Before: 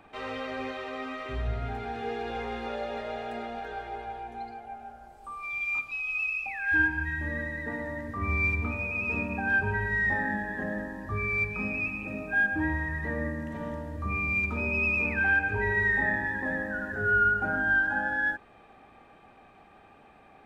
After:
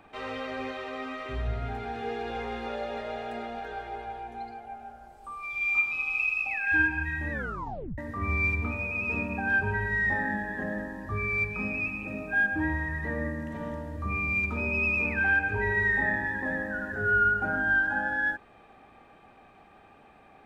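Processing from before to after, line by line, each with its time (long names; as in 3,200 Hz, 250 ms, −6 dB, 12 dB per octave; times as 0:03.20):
0:05.48–0:06.49: thrown reverb, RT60 2.7 s, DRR −1 dB
0:07.32: tape stop 0.66 s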